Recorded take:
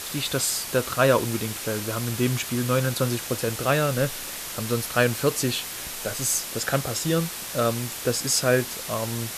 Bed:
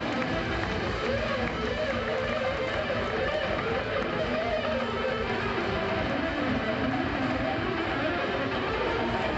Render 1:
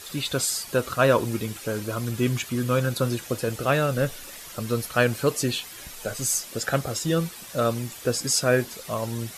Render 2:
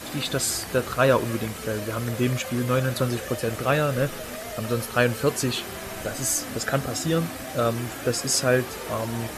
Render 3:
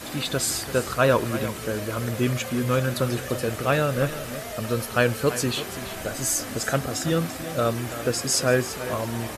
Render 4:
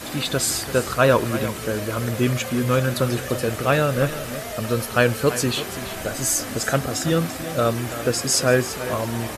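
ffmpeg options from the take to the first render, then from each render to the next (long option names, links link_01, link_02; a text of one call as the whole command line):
ffmpeg -i in.wav -af "afftdn=noise_reduction=10:noise_floor=-35" out.wav
ffmpeg -i in.wav -i bed.wav -filter_complex "[1:a]volume=-8dB[link_01];[0:a][link_01]amix=inputs=2:normalize=0" out.wav
ffmpeg -i in.wav -af "aecho=1:1:337:0.224" out.wav
ffmpeg -i in.wav -af "volume=3dB" out.wav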